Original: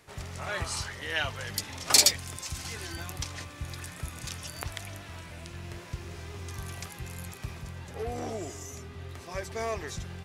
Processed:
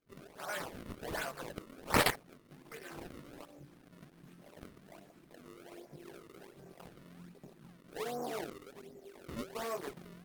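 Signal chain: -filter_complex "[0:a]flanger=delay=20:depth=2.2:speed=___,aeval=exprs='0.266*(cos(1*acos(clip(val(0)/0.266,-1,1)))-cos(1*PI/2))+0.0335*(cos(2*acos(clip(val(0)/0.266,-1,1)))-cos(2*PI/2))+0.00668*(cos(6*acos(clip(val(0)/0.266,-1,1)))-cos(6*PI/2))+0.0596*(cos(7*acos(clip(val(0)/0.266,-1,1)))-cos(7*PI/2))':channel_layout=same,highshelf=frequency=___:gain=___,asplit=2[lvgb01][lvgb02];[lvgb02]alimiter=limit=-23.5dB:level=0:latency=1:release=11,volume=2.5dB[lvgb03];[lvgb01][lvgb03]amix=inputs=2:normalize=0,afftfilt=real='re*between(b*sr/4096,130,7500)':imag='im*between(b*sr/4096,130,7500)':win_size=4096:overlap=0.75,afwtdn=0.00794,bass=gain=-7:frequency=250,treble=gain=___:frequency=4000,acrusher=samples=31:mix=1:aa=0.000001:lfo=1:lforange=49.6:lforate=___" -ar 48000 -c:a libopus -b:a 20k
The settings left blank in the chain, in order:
0.34, 4900, -11, -2, 1.3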